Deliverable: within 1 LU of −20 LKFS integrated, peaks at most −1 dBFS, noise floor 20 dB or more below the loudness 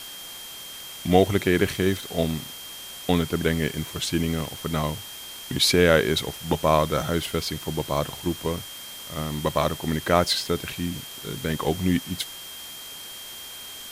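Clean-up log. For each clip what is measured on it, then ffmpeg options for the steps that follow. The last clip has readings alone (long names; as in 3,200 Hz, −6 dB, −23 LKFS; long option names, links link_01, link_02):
interfering tone 3,200 Hz; level of the tone −40 dBFS; background noise floor −39 dBFS; target noise floor −45 dBFS; integrated loudness −24.5 LKFS; sample peak −3.0 dBFS; target loudness −20.0 LKFS
→ -af "bandreject=frequency=3200:width=30"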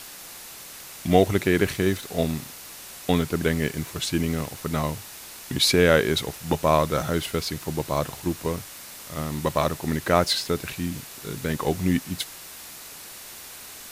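interfering tone none found; background noise floor −42 dBFS; target noise floor −45 dBFS
→ -af "afftdn=noise_reduction=6:noise_floor=-42"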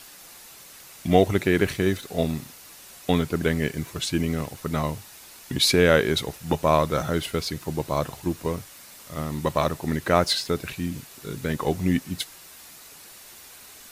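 background noise floor −47 dBFS; integrated loudness −25.0 LKFS; sample peak −3.0 dBFS; target loudness −20.0 LKFS
→ -af "volume=5dB,alimiter=limit=-1dB:level=0:latency=1"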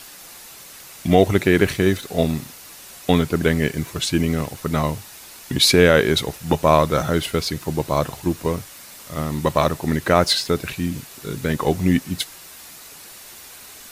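integrated loudness −20.0 LKFS; sample peak −1.0 dBFS; background noise floor −42 dBFS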